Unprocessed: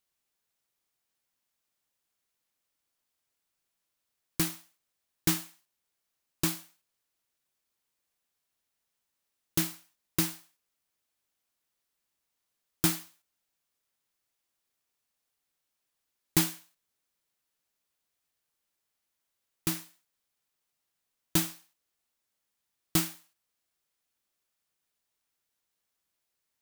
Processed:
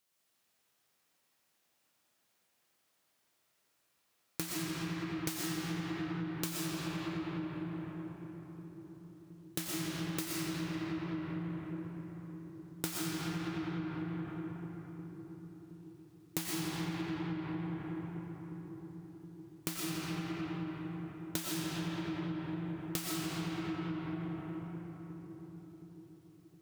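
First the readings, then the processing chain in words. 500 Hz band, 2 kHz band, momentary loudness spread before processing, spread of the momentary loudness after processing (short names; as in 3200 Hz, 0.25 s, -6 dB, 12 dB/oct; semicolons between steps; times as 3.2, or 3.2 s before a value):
+3.0 dB, -0.5 dB, 11 LU, 14 LU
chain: HPF 91 Hz 12 dB/oct; split-band echo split 440 Hz, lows 0.717 s, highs 85 ms, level -11.5 dB; digital reverb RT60 4.6 s, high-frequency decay 0.45×, pre-delay 75 ms, DRR -6 dB; compressor 6:1, threshold -37 dBFS, peak gain reduction 16.5 dB; Doppler distortion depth 0.17 ms; gain +2.5 dB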